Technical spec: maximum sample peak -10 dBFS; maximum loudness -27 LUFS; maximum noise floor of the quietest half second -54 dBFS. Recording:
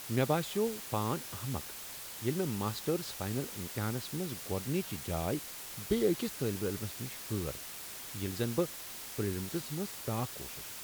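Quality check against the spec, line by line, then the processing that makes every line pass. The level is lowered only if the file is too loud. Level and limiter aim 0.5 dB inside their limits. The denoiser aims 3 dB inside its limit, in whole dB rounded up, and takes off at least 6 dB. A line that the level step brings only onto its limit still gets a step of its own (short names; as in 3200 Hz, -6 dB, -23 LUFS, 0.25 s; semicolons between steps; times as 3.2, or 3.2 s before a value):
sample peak -16.5 dBFS: OK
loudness -35.5 LUFS: OK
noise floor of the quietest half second -45 dBFS: fail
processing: denoiser 12 dB, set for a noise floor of -45 dBFS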